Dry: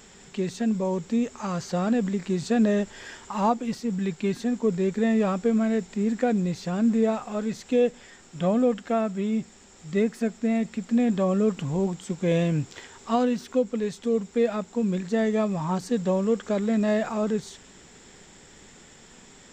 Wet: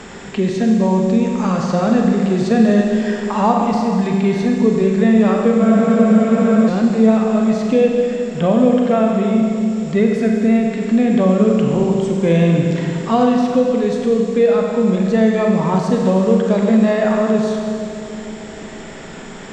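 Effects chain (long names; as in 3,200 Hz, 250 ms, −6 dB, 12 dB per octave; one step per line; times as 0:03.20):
high-frequency loss of the air 59 metres
on a send: delay with a low-pass on its return 155 ms, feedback 77%, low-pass 890 Hz, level −16.5 dB
on the sum: four-comb reverb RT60 2 s, combs from 32 ms, DRR 0.5 dB
frozen spectrum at 0:05.63, 1.05 s
multiband upward and downward compressor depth 40%
level +7 dB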